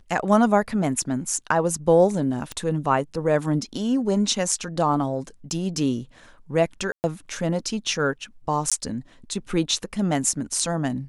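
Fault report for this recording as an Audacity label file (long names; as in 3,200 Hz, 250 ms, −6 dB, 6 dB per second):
2.520000	2.520000	click −16 dBFS
6.920000	7.040000	drop-out 119 ms
8.700000	8.720000	drop-out 16 ms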